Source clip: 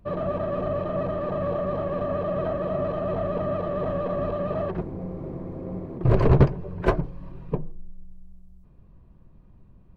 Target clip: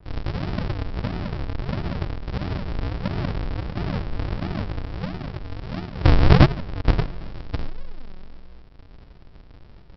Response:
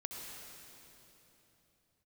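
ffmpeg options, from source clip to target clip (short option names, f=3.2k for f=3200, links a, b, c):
-af "lowshelf=f=250:g=10,aresample=11025,acrusher=samples=40:mix=1:aa=0.000001:lfo=1:lforange=40:lforate=1.5,aresample=44100,adynamicequalizer=threshold=0.00794:dfrequency=3000:dqfactor=0.7:tfrequency=3000:tqfactor=0.7:attack=5:release=100:ratio=0.375:range=2:mode=cutabove:tftype=highshelf,volume=-3.5dB"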